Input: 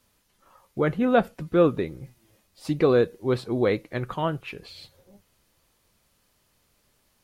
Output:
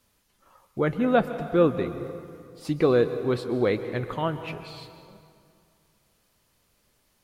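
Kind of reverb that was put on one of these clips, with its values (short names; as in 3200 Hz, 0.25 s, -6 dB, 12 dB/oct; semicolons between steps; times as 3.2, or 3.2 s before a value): plate-style reverb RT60 2.4 s, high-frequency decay 0.65×, pre-delay 0.115 s, DRR 10.5 dB; gain -1 dB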